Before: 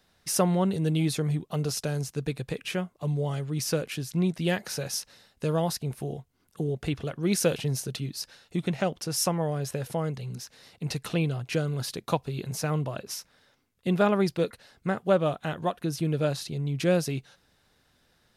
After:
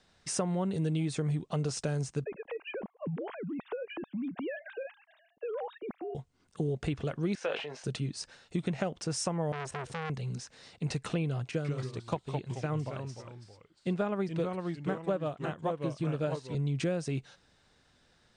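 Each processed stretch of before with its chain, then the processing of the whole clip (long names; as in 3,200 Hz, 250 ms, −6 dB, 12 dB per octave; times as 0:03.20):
0:02.24–0:06.15: three sine waves on the formant tracks + low-pass filter 1,800 Hz 6 dB per octave + downward compressor 4 to 1, threshold −35 dBFS
0:07.35–0:07.84: flat-topped band-pass 1,400 Hz, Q 0.53 + double-tracking delay 20 ms −9 dB + level that may fall only so fast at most 72 dB per second
0:09.52–0:10.10: parametric band 65 Hz +8.5 dB 1.8 octaves + saturating transformer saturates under 2,100 Hz
0:11.51–0:16.55: de-essing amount 90% + delay with pitch and tempo change per echo 135 ms, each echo −2 semitones, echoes 2, each echo −6 dB + expander for the loud parts, over −40 dBFS
whole clip: Butterworth low-pass 9,100 Hz 72 dB per octave; downward compressor 12 to 1, threshold −27 dBFS; dynamic equaliser 4,400 Hz, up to −6 dB, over −51 dBFS, Q 1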